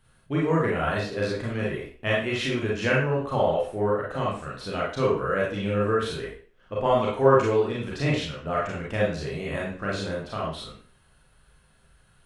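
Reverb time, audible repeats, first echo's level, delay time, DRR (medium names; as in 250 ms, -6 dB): 0.45 s, no echo, no echo, no echo, -5.5 dB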